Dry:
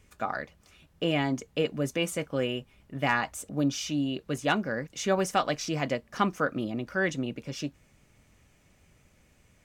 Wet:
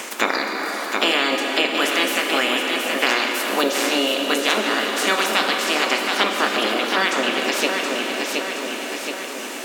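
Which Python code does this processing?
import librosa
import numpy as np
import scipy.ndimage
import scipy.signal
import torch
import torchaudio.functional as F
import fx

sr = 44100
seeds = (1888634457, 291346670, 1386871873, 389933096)

p1 = fx.spec_clip(x, sr, under_db=26)
p2 = fx.rider(p1, sr, range_db=10, speed_s=0.5)
p3 = p1 + F.gain(torch.from_numpy(p2), 2.0).numpy()
p4 = fx.brickwall_highpass(p3, sr, low_hz=200.0)
p5 = p4 + fx.echo_feedback(p4, sr, ms=722, feedback_pct=35, wet_db=-7.5, dry=0)
p6 = fx.rev_plate(p5, sr, seeds[0], rt60_s=3.0, hf_ratio=0.75, predelay_ms=0, drr_db=2.5)
y = fx.band_squash(p6, sr, depth_pct=70)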